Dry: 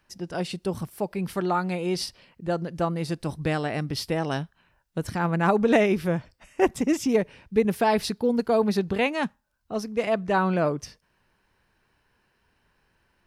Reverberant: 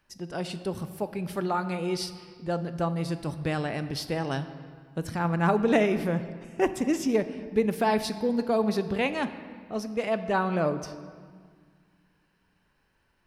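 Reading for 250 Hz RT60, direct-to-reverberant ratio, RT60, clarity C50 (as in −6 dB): 2.7 s, 10.0 dB, 1.9 s, 12.0 dB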